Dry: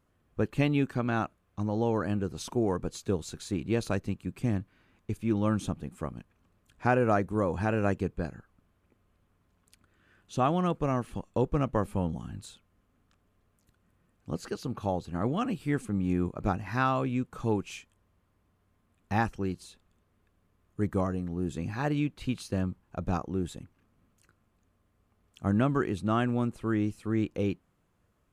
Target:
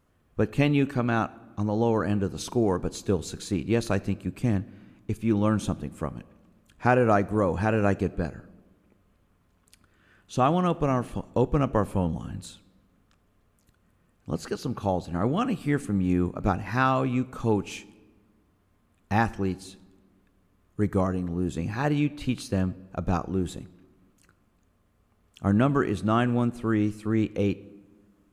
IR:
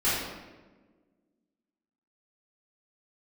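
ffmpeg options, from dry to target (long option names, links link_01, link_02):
-filter_complex "[0:a]asplit=2[link_01][link_02];[1:a]atrim=start_sample=2205,highshelf=frequency=4900:gain=6.5[link_03];[link_02][link_03]afir=irnorm=-1:irlink=0,volume=-31.5dB[link_04];[link_01][link_04]amix=inputs=2:normalize=0,volume=4dB"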